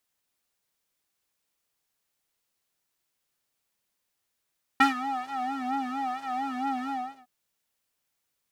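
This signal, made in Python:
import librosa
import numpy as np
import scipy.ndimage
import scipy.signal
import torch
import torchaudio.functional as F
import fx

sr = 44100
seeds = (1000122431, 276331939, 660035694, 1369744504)

y = fx.sub_patch_vibrato(sr, seeds[0], note=60, wave='square', wave2='square', interval_st=0, detune_cents=7, level2_db=-2, sub_db=-28.5, noise_db=-9.0, kind='bandpass', cutoff_hz=580.0, q=1.6, env_oct=1.5, env_decay_s=0.27, env_sustain_pct=40, attack_ms=8.8, decay_s=0.13, sustain_db=-15.0, release_s=0.36, note_s=2.1, lfo_hz=4.4, vibrato_cents=93)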